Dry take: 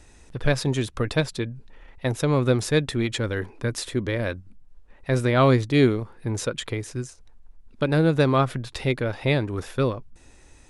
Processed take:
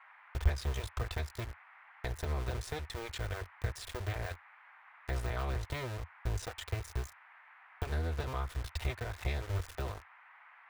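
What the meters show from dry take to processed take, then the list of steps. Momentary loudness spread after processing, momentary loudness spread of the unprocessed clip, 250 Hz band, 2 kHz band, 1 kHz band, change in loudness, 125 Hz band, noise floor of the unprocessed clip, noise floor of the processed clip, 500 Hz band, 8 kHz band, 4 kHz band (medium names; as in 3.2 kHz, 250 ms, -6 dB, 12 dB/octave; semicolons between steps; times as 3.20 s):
20 LU, 13 LU, -24.0 dB, -13.0 dB, -13.5 dB, -14.5 dB, -12.0 dB, -51 dBFS, -59 dBFS, -19.5 dB, -13.0 dB, -13.5 dB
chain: cycle switcher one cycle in 2, muted; overdrive pedal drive 10 dB, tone 8 kHz, clips at -8 dBFS; comb of notches 280 Hz; small samples zeroed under -36 dBFS; compression 5:1, threshold -31 dBFS, peak gain reduction 13.5 dB; resonant low shelf 120 Hz +13 dB, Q 3; band noise 800–2200 Hz -53 dBFS; de-esser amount 75%; trim -5.5 dB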